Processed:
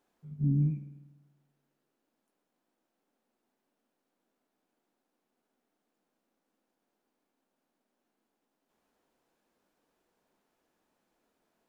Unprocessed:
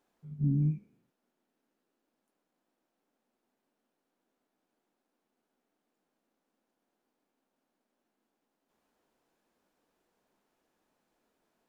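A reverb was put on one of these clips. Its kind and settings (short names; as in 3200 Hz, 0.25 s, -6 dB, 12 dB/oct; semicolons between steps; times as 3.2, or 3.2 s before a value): spring tank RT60 1.2 s, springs 49 ms, DRR 13.5 dB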